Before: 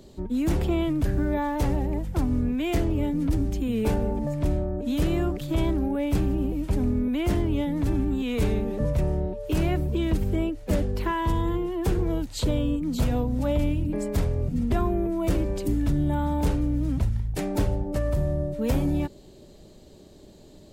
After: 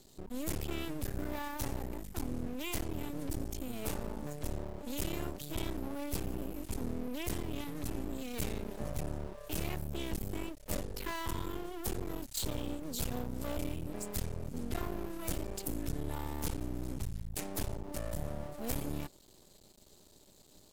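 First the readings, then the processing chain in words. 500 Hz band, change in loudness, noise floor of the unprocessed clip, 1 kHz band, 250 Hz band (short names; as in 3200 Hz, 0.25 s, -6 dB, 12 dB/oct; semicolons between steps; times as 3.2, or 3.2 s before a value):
-13.0 dB, -13.5 dB, -49 dBFS, -11.0 dB, -14.5 dB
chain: half-wave rectifier; pre-emphasis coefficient 0.8; gain +4 dB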